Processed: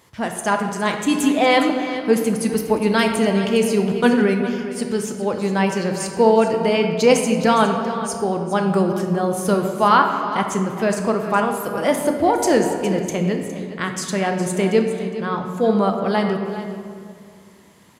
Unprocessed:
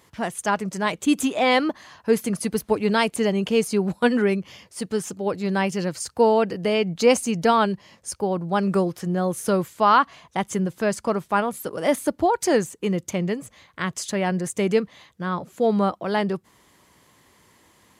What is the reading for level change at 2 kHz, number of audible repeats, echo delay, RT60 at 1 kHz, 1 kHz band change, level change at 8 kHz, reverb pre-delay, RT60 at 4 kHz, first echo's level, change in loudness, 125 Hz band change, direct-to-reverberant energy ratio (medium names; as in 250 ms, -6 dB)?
+3.5 dB, 1, 411 ms, 2.0 s, +3.5 dB, +3.0 dB, 8 ms, 1.2 s, -13.0 dB, +3.5 dB, +3.5 dB, 3.5 dB